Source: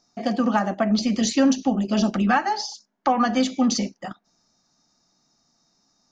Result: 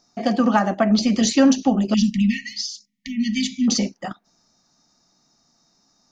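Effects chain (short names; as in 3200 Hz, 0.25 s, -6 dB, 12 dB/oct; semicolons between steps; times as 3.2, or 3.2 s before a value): 1.94–3.68 brick-wall FIR band-stop 260–1800 Hz; gain +3.5 dB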